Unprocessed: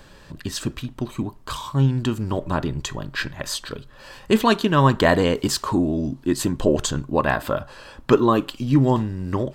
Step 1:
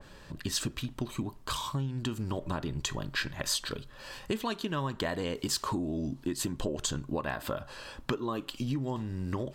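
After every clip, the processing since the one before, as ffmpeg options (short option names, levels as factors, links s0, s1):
-af "acompressor=threshold=0.0562:ratio=12,adynamicequalizer=threshold=0.00501:dfrequency=2200:dqfactor=0.7:tfrequency=2200:tqfactor=0.7:attack=5:release=100:ratio=0.375:range=2:mode=boostabove:tftype=highshelf,volume=0.631"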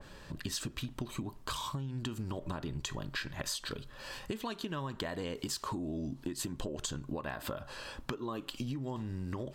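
-af "acompressor=threshold=0.02:ratio=6"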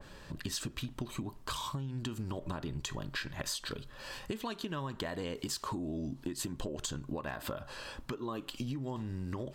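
-af "aeval=exprs='clip(val(0),-1,0.0398)':c=same"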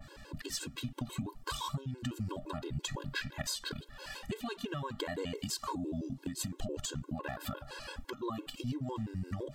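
-af "afftfilt=real='re*gt(sin(2*PI*5.9*pts/sr)*(1-2*mod(floor(b*sr/1024/280),2)),0)':imag='im*gt(sin(2*PI*5.9*pts/sr)*(1-2*mod(floor(b*sr/1024/280),2)),0)':win_size=1024:overlap=0.75,volume=1.41"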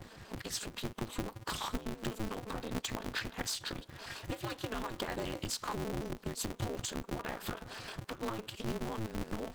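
-af "aeval=exprs='val(0)*sgn(sin(2*PI*110*n/s))':c=same"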